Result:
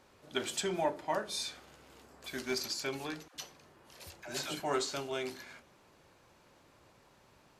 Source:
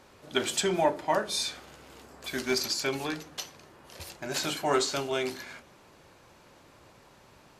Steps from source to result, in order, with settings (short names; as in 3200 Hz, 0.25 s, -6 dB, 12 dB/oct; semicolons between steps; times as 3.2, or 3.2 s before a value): 3.28–4.6 dispersion lows, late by 73 ms, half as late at 580 Hz; gain -7 dB